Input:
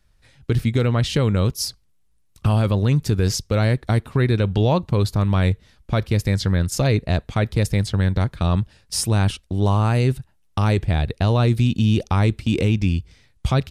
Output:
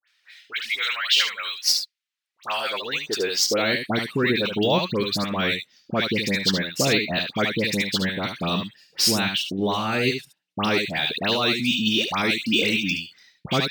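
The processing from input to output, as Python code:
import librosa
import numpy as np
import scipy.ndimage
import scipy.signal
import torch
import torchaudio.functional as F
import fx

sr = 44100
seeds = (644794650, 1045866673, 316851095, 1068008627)

y = scipy.ndimage.median_filter(x, 3, mode='constant')
y = fx.weighting(y, sr, curve='D')
y = fx.dereverb_blind(y, sr, rt60_s=0.93)
y = fx.tilt_eq(y, sr, slope=1.5, at=(10.8, 12.91))
y = fx.dispersion(y, sr, late='highs', ms=82.0, hz=1900.0)
y = fx.filter_sweep_highpass(y, sr, from_hz=1600.0, to_hz=200.0, start_s=1.97, end_s=3.94, q=1.4)
y = y + 10.0 ** (-7.5 / 20.0) * np.pad(y, (int(73 * sr / 1000.0), 0))[:len(y)]
y = np.interp(np.arange(len(y)), np.arange(len(y))[::2], y[::2])
y = y * librosa.db_to_amplitude(-1.0)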